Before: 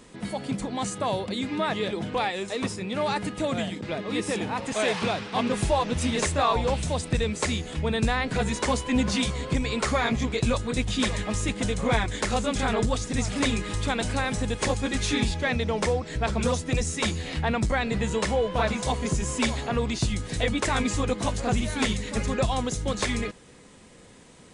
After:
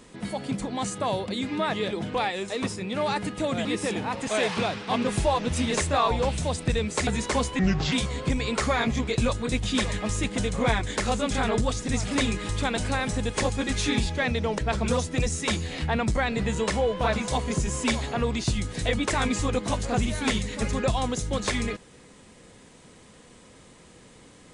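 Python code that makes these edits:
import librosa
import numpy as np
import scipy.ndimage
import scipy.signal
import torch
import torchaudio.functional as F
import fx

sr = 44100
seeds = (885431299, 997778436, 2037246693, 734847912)

y = fx.edit(x, sr, fx.cut(start_s=3.65, length_s=0.45),
    fx.cut(start_s=7.52, length_s=0.88),
    fx.speed_span(start_s=8.92, length_s=0.25, speed=0.75),
    fx.cut(start_s=15.83, length_s=0.3), tone=tone)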